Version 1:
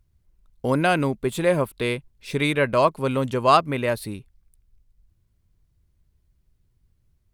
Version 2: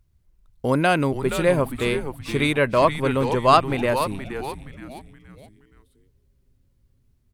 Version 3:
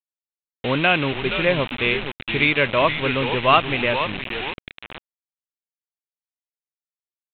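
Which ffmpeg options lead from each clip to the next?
ffmpeg -i in.wav -filter_complex "[0:a]asplit=5[link_01][link_02][link_03][link_04][link_05];[link_02]adelay=472,afreqshift=-140,volume=-9dB[link_06];[link_03]adelay=944,afreqshift=-280,volume=-17dB[link_07];[link_04]adelay=1416,afreqshift=-420,volume=-24.9dB[link_08];[link_05]adelay=1888,afreqshift=-560,volume=-32.9dB[link_09];[link_01][link_06][link_07][link_08][link_09]amix=inputs=5:normalize=0,volume=1dB" out.wav
ffmpeg -i in.wav -af "aresample=8000,acrusher=bits=4:mix=0:aa=0.000001,aresample=44100,equalizer=frequency=2600:width=1.5:gain=11,volume=-2dB" out.wav

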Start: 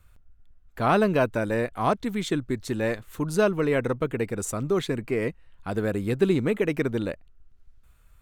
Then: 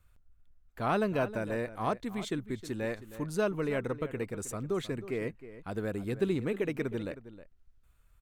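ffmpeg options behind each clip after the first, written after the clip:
ffmpeg -i in.wav -filter_complex "[0:a]asplit=2[link_01][link_02];[link_02]adelay=314.9,volume=-14dB,highshelf=frequency=4000:gain=-7.08[link_03];[link_01][link_03]amix=inputs=2:normalize=0,volume=-8dB" out.wav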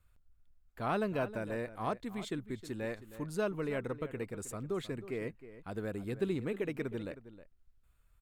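ffmpeg -i in.wav -af "bandreject=frequency=6000:width=14,volume=-4dB" out.wav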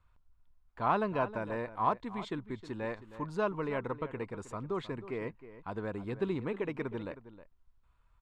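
ffmpeg -i in.wav -af "lowpass=4500,equalizer=frequency=980:width_type=o:width=0.51:gain=12.5" out.wav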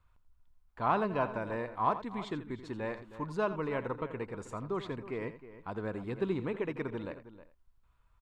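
ffmpeg -i in.wav -af "aecho=1:1:84:0.224" out.wav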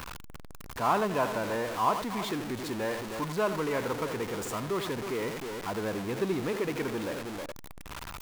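ffmpeg -i in.wav -af "aeval=exprs='val(0)+0.5*0.0237*sgn(val(0))':channel_layout=same,lowshelf=frequency=130:gain=-9,volume=1.5dB" out.wav

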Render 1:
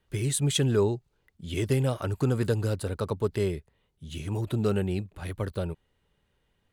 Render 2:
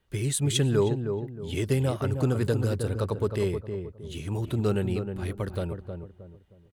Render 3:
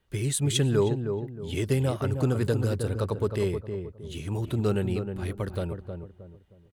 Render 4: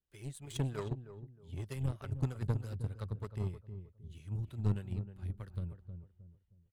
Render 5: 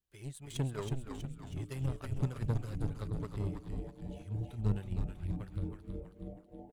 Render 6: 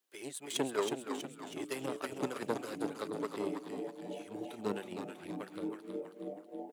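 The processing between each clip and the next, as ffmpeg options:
ffmpeg -i in.wav -filter_complex "[0:a]asplit=2[link_01][link_02];[link_02]adelay=313,lowpass=frequency=1000:poles=1,volume=-6dB,asplit=2[link_03][link_04];[link_04]adelay=313,lowpass=frequency=1000:poles=1,volume=0.36,asplit=2[link_05][link_06];[link_06]adelay=313,lowpass=frequency=1000:poles=1,volume=0.36,asplit=2[link_07][link_08];[link_08]adelay=313,lowpass=frequency=1000:poles=1,volume=0.36[link_09];[link_01][link_03][link_05][link_07][link_09]amix=inputs=5:normalize=0" out.wav
ffmpeg -i in.wav -af anull out.wav
ffmpeg -i in.wav -filter_complex "[0:a]acrossover=split=430[link_01][link_02];[link_01]aeval=exprs='val(0)*(1-0.7/2+0.7/2*cos(2*PI*3.2*n/s))':channel_layout=same[link_03];[link_02]aeval=exprs='val(0)*(1-0.7/2-0.7/2*cos(2*PI*3.2*n/s))':channel_layout=same[link_04];[link_03][link_04]amix=inputs=2:normalize=0,aeval=exprs='0.15*(cos(1*acos(clip(val(0)/0.15,-1,1)))-cos(1*PI/2))+0.00596*(cos(2*acos(clip(val(0)/0.15,-1,1)))-cos(2*PI/2))+0.0376*(cos(3*acos(clip(val(0)/0.15,-1,1)))-cos(3*PI/2))+0.00376*(cos(4*acos(clip(val(0)/0.15,-1,1)))-cos(4*PI/2))':channel_layout=same,asubboost=boost=5.5:cutoff=170,volume=-6.5dB" out.wav
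ffmpeg -i in.wav -filter_complex "[0:a]asplit=8[link_01][link_02][link_03][link_04][link_05][link_06][link_07][link_08];[link_02]adelay=322,afreqshift=-140,volume=-5dB[link_09];[link_03]adelay=644,afreqshift=-280,volume=-10dB[link_10];[link_04]adelay=966,afreqshift=-420,volume=-15.1dB[link_11];[link_05]adelay=1288,afreqshift=-560,volume=-20.1dB[link_12];[link_06]adelay=1610,afreqshift=-700,volume=-25.1dB[link_13];[link_07]adelay=1932,afreqshift=-840,volume=-30.2dB[link_14];[link_08]adelay=2254,afreqshift=-980,volume=-35.2dB[link_15];[link_01][link_09][link_10][link_11][link_12][link_13][link_14][link_15]amix=inputs=8:normalize=0" out.wav
ffmpeg -i in.wav -af "highpass=frequency=280:width=0.5412,highpass=frequency=280:width=1.3066,volume=8.5dB" out.wav

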